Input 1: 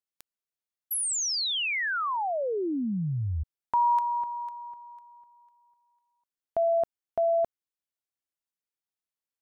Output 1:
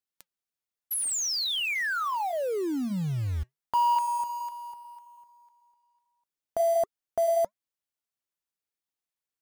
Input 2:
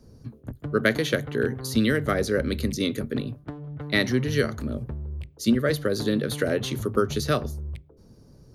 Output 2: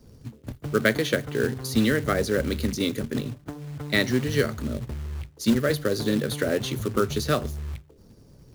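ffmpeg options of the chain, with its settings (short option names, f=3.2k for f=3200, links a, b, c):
-af "acrusher=bits=4:mode=log:mix=0:aa=0.000001,flanger=delay=0.6:depth=3.5:regen=-83:speed=1.3:shape=triangular,volume=4.5dB"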